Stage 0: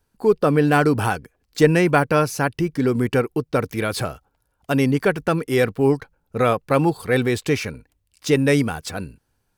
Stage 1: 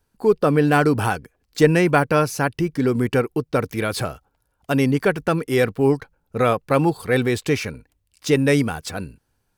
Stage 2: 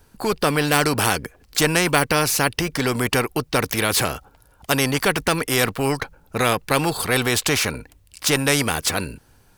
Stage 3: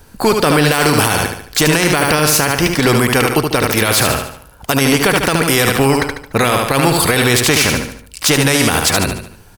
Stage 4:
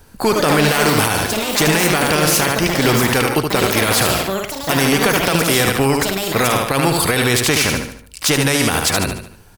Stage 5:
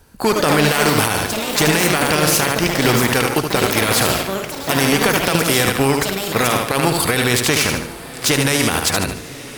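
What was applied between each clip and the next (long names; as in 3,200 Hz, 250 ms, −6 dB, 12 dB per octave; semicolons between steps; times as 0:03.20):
no processing that can be heard
every bin compressed towards the loudest bin 2 to 1
repeating echo 73 ms, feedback 43%, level −6.5 dB; boost into a limiter +11.5 dB; level −1 dB
delay with pitch and tempo change per echo 185 ms, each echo +6 semitones, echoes 2, each echo −6 dB; level −3 dB
feedback delay with all-pass diffusion 1,047 ms, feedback 54%, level −15 dB; harmonic generator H 7 −27 dB, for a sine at −1 dBFS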